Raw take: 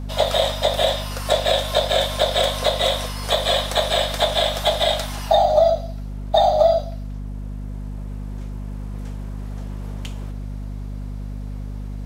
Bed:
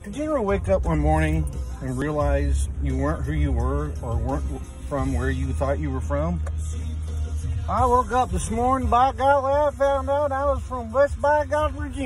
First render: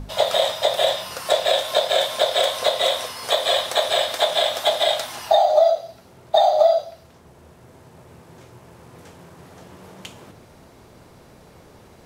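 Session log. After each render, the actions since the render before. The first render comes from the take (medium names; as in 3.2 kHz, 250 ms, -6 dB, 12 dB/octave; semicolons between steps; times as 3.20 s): hum notches 50/100/150/200/250/300 Hz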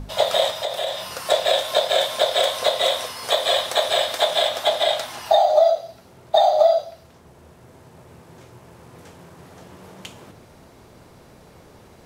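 0.50–1.15 s: compression 2:1, threshold -26 dBFS; 4.48–5.26 s: treble shelf 5.3 kHz -4 dB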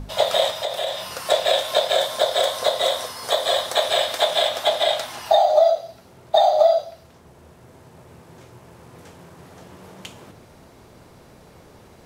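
1.95–3.75 s: peaking EQ 2.6 kHz -6 dB 0.62 oct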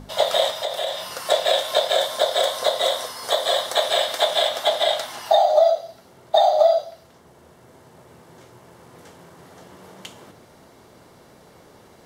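bass shelf 110 Hz -11.5 dB; band-stop 2.5 kHz, Q 12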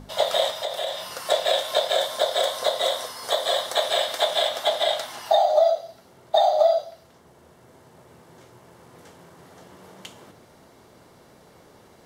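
trim -2.5 dB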